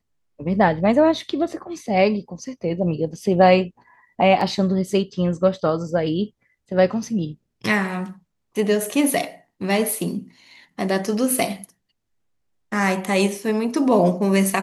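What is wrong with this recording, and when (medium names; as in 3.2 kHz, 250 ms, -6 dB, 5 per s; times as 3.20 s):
4.41 s: dropout 3.2 ms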